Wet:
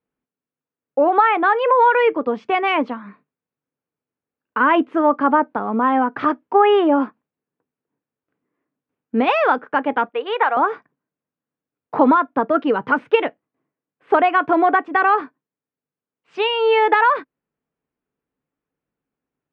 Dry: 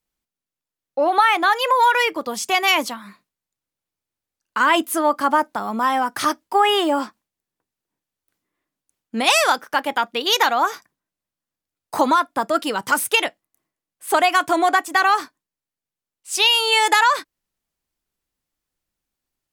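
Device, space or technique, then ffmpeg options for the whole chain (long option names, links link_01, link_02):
bass cabinet: -filter_complex "[0:a]highpass=67,equalizer=frequency=74:width_type=q:width=4:gain=-9,equalizer=frequency=150:width_type=q:width=4:gain=6,equalizer=frequency=260:width_type=q:width=4:gain=8,equalizer=frequency=450:width_type=q:width=4:gain=9,equalizer=frequency=2000:width_type=q:width=4:gain=-4,lowpass=frequency=2300:width=0.5412,lowpass=frequency=2300:width=1.3066,asettb=1/sr,asplit=3[link_01][link_02][link_03];[link_01]atrim=end=10.094[link_04];[link_02]atrim=start=10.09:end=10.57,asetpts=PTS-STARTPTS,afade=type=in:duration=0.004:curve=qsin,afade=type=out:start_time=0.476:duration=0.004:curve=qsin,acrossover=split=470 3400:gain=0.0794 1 0.178[link_05][link_06][link_07];[link_05][link_06][link_07]amix=inputs=3:normalize=0[link_08];[link_03]atrim=start=10.566[link_09];[link_04][link_08]acrossfade=duration=0.004:curve1=hsin:curve2=qsin[link_10];[link_10][link_09]acrossfade=duration=0.004:curve1=qsin:curve2=hsin,volume=1dB"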